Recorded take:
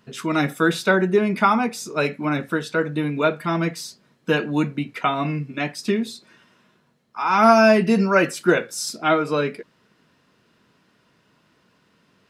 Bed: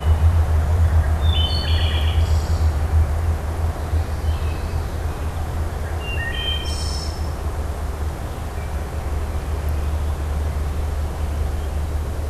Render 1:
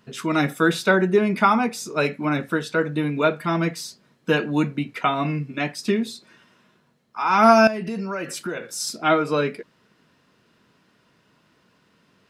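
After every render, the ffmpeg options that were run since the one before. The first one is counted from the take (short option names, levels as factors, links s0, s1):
-filter_complex "[0:a]asettb=1/sr,asplit=3[s0][s1][s2];[s0]atrim=end=7.674[s3];[s1]atrim=start=7.67:end=8.8,asetpts=PTS-STARTPTS,afade=t=in:d=0.004:c=qsin,afade=t=out:st=1.126:d=0.004:c=qsin,acompressor=threshold=0.0501:ratio=5:attack=3.2:release=140:knee=1:detection=peak[s4];[s2]atrim=start=8.796[s5];[s3][s4]acrossfade=d=0.004:c1=hsin:c2=qsin[s6];[s6][s5]acrossfade=d=0.004:c1=qsin:c2=hsin"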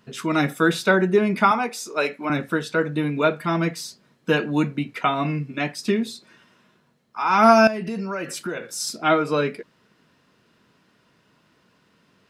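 -filter_complex "[0:a]asettb=1/sr,asplit=3[s0][s1][s2];[s0]atrim=end=1.514[s3];[s1]atrim=start=1.51:end=2.3,asetpts=PTS-STARTPTS,afade=t=in:d=0.004:c=qsin,afade=t=out:st=0.786:d=0.004:c=qsin,highpass=360[s4];[s2]atrim=start=2.296[s5];[s3][s4]acrossfade=d=0.004:c1=hsin:c2=qsin[s6];[s6][s5]acrossfade=d=0.004:c1=qsin:c2=hsin"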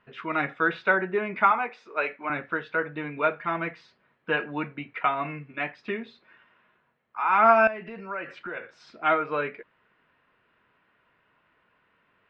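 -af "lowpass=f=2500:w=0.5412,lowpass=f=2500:w=1.3066,equalizer=f=190:t=o:w=2.7:g=-14.5"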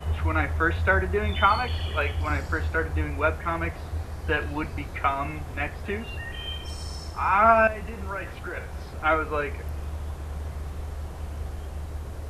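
-filter_complex "[1:a]volume=0.282[s0];[0:a][s0]amix=inputs=2:normalize=0"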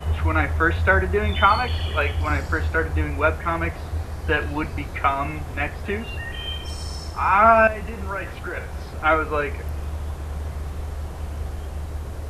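-af "volume=1.58,alimiter=limit=0.708:level=0:latency=1"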